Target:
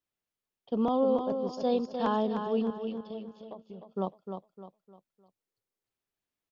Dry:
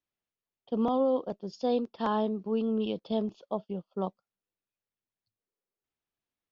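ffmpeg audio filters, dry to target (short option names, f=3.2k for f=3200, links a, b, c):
-filter_complex "[0:a]asettb=1/sr,asplit=3[a][b][c];[a]atrim=end=2.704[d];[b]atrim=start=2.7:end=3.94,asetpts=PTS-STARTPTS,afade=t=in:d=0.004:c=qsin,afade=t=out:st=1.236:d=0.004:c=qsin,acompressor=threshold=-44dB:ratio=4[e];[c]atrim=start=3.936[f];[d][e]acrossfade=d=0.004:c1=hsin:c2=qsin[g];[g][f]acrossfade=d=0.004:c1=qsin:c2=hsin,asplit=2[h][i];[i]aecho=0:1:304|608|912|1216:0.447|0.165|0.0612|0.0226[j];[h][j]amix=inputs=2:normalize=0"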